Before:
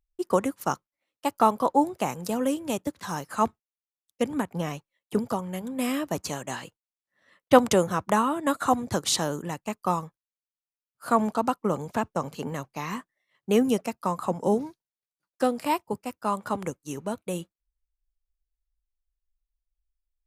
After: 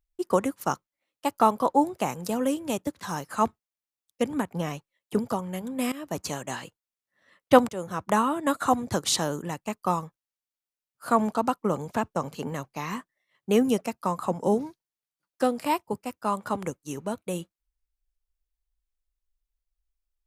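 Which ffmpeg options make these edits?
-filter_complex "[0:a]asplit=3[a][b][c];[a]atrim=end=5.92,asetpts=PTS-STARTPTS,afade=t=out:st=5.916:d=0.004:c=hsin:silence=0.149624[d];[b]atrim=start=5.92:end=7.69,asetpts=PTS-STARTPTS,afade=t=in:d=0.3:silence=0.149624,afade=t=out:st=1.766:d=0.004:c=hsin:silence=0.0707946[e];[c]atrim=start=7.69,asetpts=PTS-STARTPTS,afade=t=in:d=0.47:silence=0.0707946[f];[d][e][f]concat=n=3:v=0:a=1"

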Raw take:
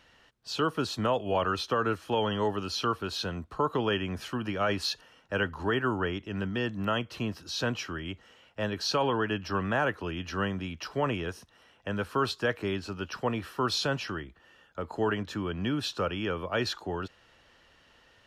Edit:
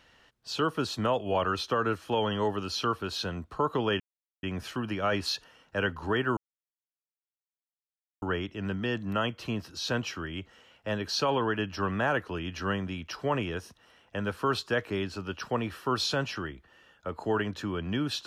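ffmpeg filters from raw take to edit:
-filter_complex "[0:a]asplit=3[a][b][c];[a]atrim=end=4,asetpts=PTS-STARTPTS,afade=t=out:st=3.996:d=0.004:c=hsin,apad=pad_dur=0.43[d];[b]atrim=start=4:end=5.94,asetpts=PTS-STARTPTS,afade=t=in:d=0.004:c=hsin,afade=t=out:st=1.936:d=0.004:c=hsin,apad=pad_dur=1.85[e];[c]atrim=start=5.94,asetpts=PTS-STARTPTS,afade=t=in:d=0.004:c=hsin[f];[d][e][f]concat=n=3:v=0:a=1"

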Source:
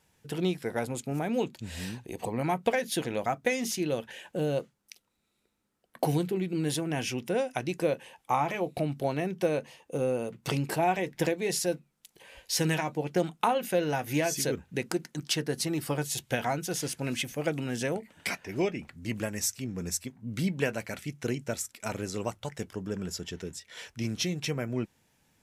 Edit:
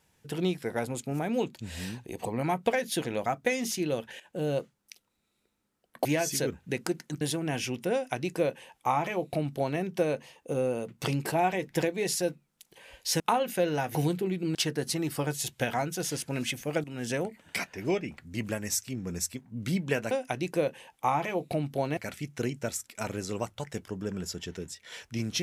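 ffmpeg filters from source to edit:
-filter_complex "[0:a]asplit=10[a][b][c][d][e][f][g][h][i][j];[a]atrim=end=4.2,asetpts=PTS-STARTPTS,afade=t=out:st=4.196:d=0.004:c=hsin:silence=0.237137[k];[b]atrim=start=4.2:end=6.052,asetpts=PTS-STARTPTS,afade=t=in:d=0.29:silence=0.237137[l];[c]atrim=start=14.098:end=15.262[m];[d]atrim=start=6.648:end=12.642[n];[e]atrim=start=13.348:end=14.102[o];[f]atrim=start=6.048:end=6.652[p];[g]atrim=start=15.258:end=17.55,asetpts=PTS-STARTPTS,afade=t=out:st=2.288:d=0.004:c=hsin:silence=0.223872[q];[h]atrim=start=17.55:end=20.822,asetpts=PTS-STARTPTS,afade=t=in:d=0.25:silence=0.223872[r];[i]atrim=start=7.368:end=9.232[s];[j]atrim=start=20.818[t];[k][l]concat=n=2:v=0:a=1[u];[u][m]acrossfade=d=0.004:c1=hsin:c2=hsin[v];[v][n]acrossfade=d=0.004:c1=hsin:c2=hsin[w];[w][o]acrossfade=d=0.004:c1=hsin:c2=hsin[x];[x][p]acrossfade=d=0.004:c1=hsin:c2=hsin[y];[q][r]concat=n=2:v=0:a=1[z];[y][z]acrossfade=d=0.004:c1=hsin:c2=hsin[aa];[aa][s]acrossfade=d=0.004:c1=hsin:c2=hsin[ab];[ab][t]acrossfade=d=0.004:c1=hsin:c2=hsin"

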